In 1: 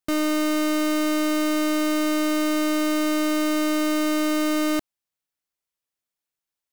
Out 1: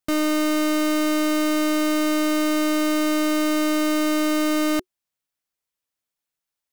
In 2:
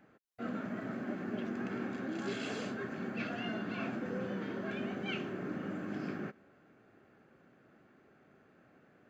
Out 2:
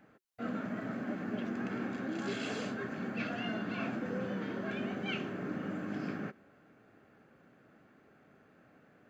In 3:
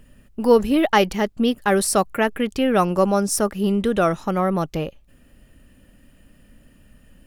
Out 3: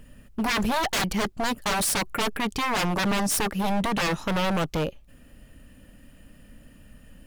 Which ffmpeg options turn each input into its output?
-af "aeval=exprs='0.0891*(abs(mod(val(0)/0.0891+3,4)-2)-1)':c=same,bandreject=f=370:w=12,volume=1.19"

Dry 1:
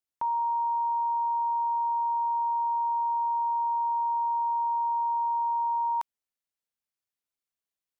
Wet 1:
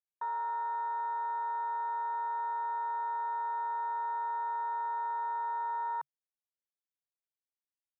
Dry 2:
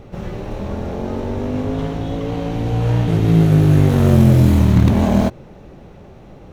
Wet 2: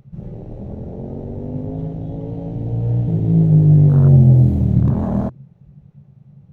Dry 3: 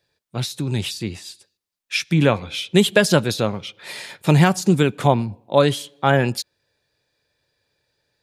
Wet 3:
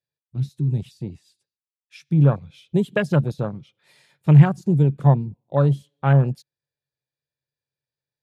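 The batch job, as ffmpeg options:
-af "equalizer=f=140:w=3.9:g=14,afwtdn=0.0891,volume=0.473"

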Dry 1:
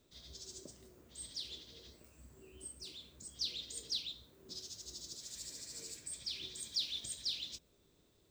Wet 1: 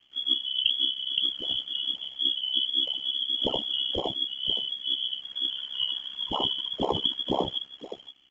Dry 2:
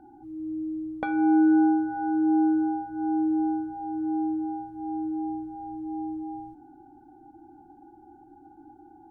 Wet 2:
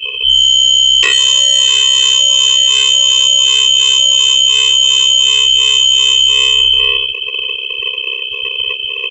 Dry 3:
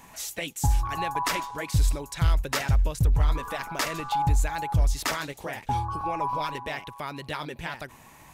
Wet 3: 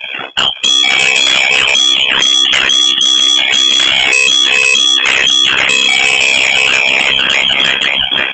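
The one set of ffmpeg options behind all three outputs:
-filter_complex "[0:a]aecho=1:1:521:0.531,lowpass=f=2900:t=q:w=0.5098,lowpass=f=2900:t=q:w=0.6013,lowpass=f=2900:t=q:w=0.9,lowpass=f=2900:t=q:w=2.563,afreqshift=-3400,asplit=2[s0][s1];[s1]adelay=35,volume=0.224[s2];[s0][s2]amix=inputs=2:normalize=0,asplit=2[s3][s4];[s4]acrusher=samples=29:mix=1:aa=0.000001,volume=0.631[s5];[s3][s5]amix=inputs=2:normalize=0,acrossover=split=830|1900[s6][s7][s8];[s6]acompressor=threshold=0.0126:ratio=4[s9];[s7]acompressor=threshold=0.0112:ratio=4[s10];[s8]acompressor=threshold=0.0447:ratio=4[s11];[s9][s10][s11]amix=inputs=3:normalize=0,highpass=f=56:p=1,lowshelf=f=390:g=-10,aresample=16000,asoftclip=type=tanh:threshold=0.0251,aresample=44100,afftdn=nr=23:nf=-49,aeval=exprs='val(0)*sin(2*PI*33*n/s)':c=same,aemphasis=mode=production:type=cd,alimiter=level_in=47.3:limit=0.891:release=50:level=0:latency=1,volume=0.891"

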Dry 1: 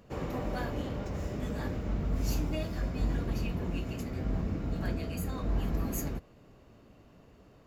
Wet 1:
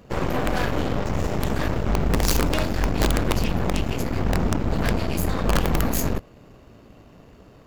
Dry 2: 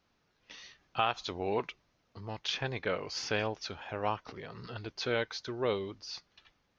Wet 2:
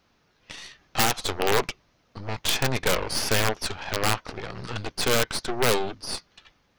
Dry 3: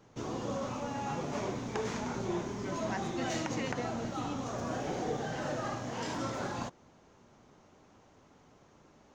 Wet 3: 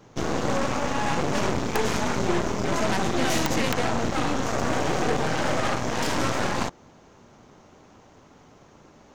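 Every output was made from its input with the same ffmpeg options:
-af "aeval=exprs='(mod(13.3*val(0)+1,2)-1)/13.3':c=same,aeval=exprs='0.0794*(cos(1*acos(clip(val(0)/0.0794,-1,1)))-cos(1*PI/2))+0.0178*(cos(8*acos(clip(val(0)/0.0794,-1,1)))-cos(8*PI/2))':c=same,volume=2.66"

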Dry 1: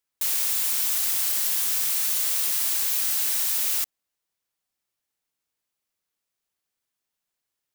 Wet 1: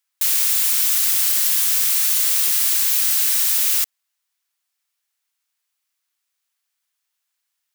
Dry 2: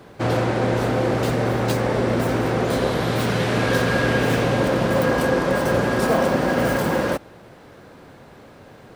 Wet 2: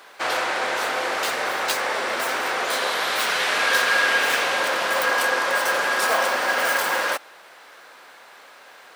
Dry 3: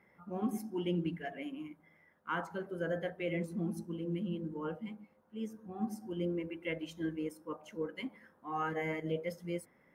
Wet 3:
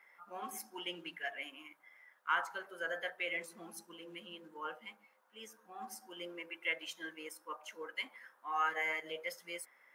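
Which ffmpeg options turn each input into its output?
-af "highpass=1100,volume=2.11"

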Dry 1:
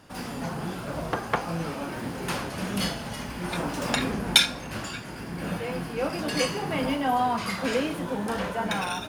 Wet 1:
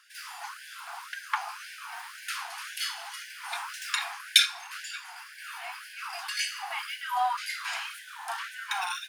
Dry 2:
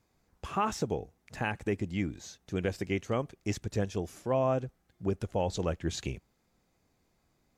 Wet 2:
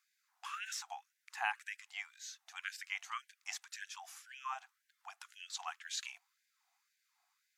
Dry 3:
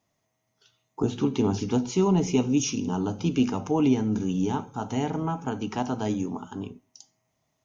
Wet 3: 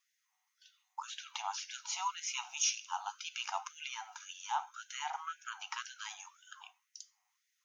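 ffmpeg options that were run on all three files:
-af "afftfilt=real='re*gte(b*sr/1024,660*pow(1500/660,0.5+0.5*sin(2*PI*1.9*pts/sr)))':imag='im*gte(b*sr/1024,660*pow(1500/660,0.5+0.5*sin(2*PI*1.9*pts/sr)))':win_size=1024:overlap=0.75,volume=0.891"

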